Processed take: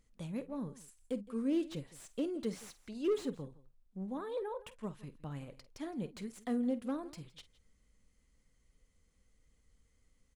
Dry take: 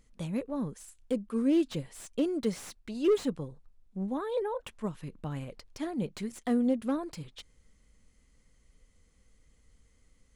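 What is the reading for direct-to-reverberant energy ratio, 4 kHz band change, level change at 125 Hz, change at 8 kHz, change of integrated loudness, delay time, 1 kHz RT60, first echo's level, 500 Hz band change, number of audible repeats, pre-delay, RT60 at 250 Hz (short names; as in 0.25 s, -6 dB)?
none, -7.0 dB, -7.0 dB, -7.0 dB, -7.0 dB, 49 ms, none, -15.5 dB, -7.0 dB, 2, none, none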